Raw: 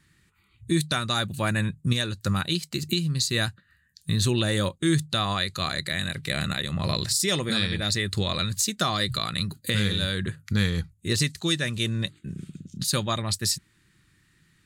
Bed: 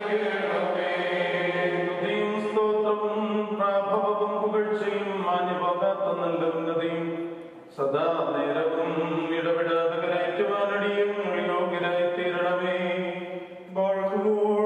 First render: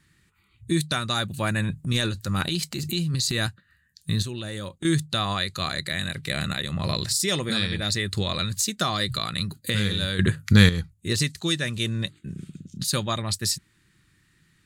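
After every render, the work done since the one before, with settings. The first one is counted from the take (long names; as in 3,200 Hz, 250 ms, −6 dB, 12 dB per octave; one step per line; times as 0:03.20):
0:01.64–0:03.47: transient designer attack −5 dB, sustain +9 dB
0:04.22–0:04.85: downward compressor 5 to 1, threshold −30 dBFS
0:10.19–0:10.69: clip gain +9 dB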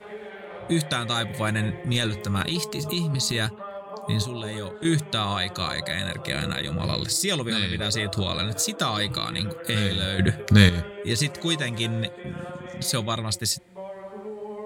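mix in bed −13 dB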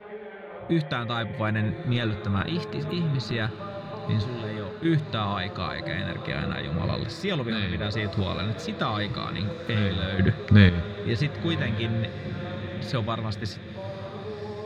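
high-frequency loss of the air 300 metres
feedback delay with all-pass diffusion 1,086 ms, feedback 63%, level −13 dB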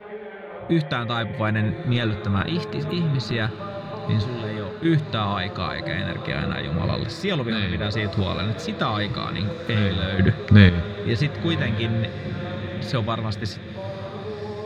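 level +3.5 dB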